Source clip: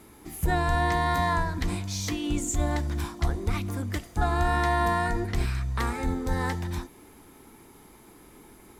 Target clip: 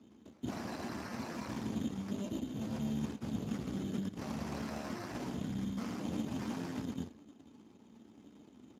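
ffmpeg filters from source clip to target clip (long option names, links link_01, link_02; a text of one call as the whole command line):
ffmpeg -i in.wav -filter_complex "[0:a]asplit=2[link_01][link_02];[link_02]aecho=0:1:110|192.5|254.4|300.8|335.6:0.631|0.398|0.251|0.158|0.1[link_03];[link_01][link_03]amix=inputs=2:normalize=0,aeval=exprs='0.335*(cos(1*acos(clip(val(0)/0.335,-1,1)))-cos(1*PI/2))+0.106*(cos(3*acos(clip(val(0)/0.335,-1,1)))-cos(3*PI/2))+0.0237*(cos(6*acos(clip(val(0)/0.335,-1,1)))-cos(6*PI/2))+0.0106*(cos(7*acos(clip(val(0)/0.335,-1,1)))-cos(7*PI/2))+0.075*(cos(8*acos(clip(val(0)/0.335,-1,1)))-cos(8*PI/2))':channel_layout=same,areverse,acompressor=threshold=-39dB:ratio=6,areverse,firequalizer=gain_entry='entry(150,0);entry(220,11);entry(370,-1);entry(1400,-6);entry(4100,-6);entry(7100,-28)':delay=0.05:min_phase=1,acrusher=samples=13:mix=1:aa=0.000001,volume=4dB" -ar 32000 -c:a libspeex -b:a 15k out.spx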